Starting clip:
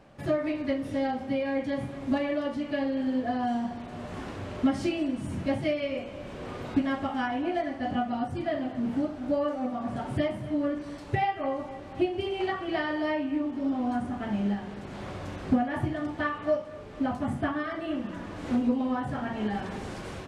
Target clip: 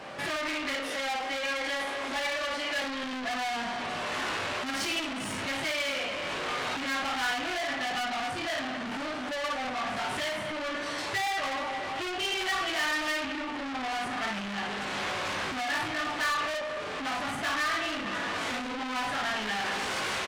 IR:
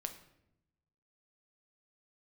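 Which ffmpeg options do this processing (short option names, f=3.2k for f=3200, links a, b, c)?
-filter_complex "[0:a]asettb=1/sr,asplit=3[a][b][c];[a]atrim=end=0.744[d];[b]atrim=start=0.74:end=2.82,asetpts=PTS-STARTPTS,afade=t=in:d=0.004:c=qsin,afade=t=out:st=2.076:d=0.004:c=qsin,highpass=f=330:w=0.5412,highpass=f=330:w=1.3066[e];[c]atrim=start=2.816[f];[d][e]acrossfade=d=0.004:c1=hsin:c2=qsin[g];[g][f]acrossfade=d=0.004:c1=qsin:c2=hsin,aecho=1:1:19|55:0.668|0.596,asplit=2[h][i];[i]highpass=f=720:p=1,volume=30dB,asoftclip=type=tanh:threshold=-14dB[j];[h][j]amix=inputs=2:normalize=0,lowpass=f=2.2k:p=1,volume=-6dB,highshelf=f=2.1k:g=10.5,acrossover=split=940[k][l];[k]alimiter=level_in=1dB:limit=-24dB:level=0:latency=1,volume=-1dB[m];[m][l]amix=inputs=2:normalize=0,volume=-9dB"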